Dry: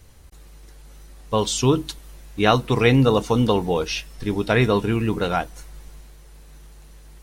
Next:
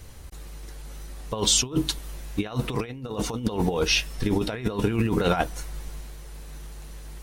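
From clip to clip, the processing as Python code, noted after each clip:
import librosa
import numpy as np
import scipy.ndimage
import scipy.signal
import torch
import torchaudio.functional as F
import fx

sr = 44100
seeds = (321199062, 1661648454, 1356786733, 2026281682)

y = fx.over_compress(x, sr, threshold_db=-24.0, ratio=-0.5)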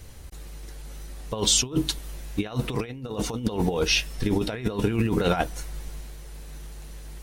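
y = fx.peak_eq(x, sr, hz=1100.0, db=-2.5, octaves=0.77)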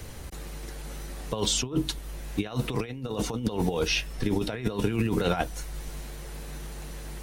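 y = fx.band_squash(x, sr, depth_pct=40)
y = y * 10.0 ** (-2.0 / 20.0)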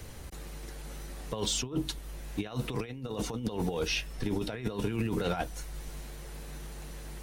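y = 10.0 ** (-16.0 / 20.0) * np.tanh(x / 10.0 ** (-16.0 / 20.0))
y = y * 10.0 ** (-4.0 / 20.0)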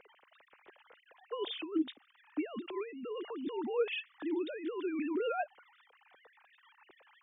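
y = fx.sine_speech(x, sr)
y = y * 10.0 ** (-4.0 / 20.0)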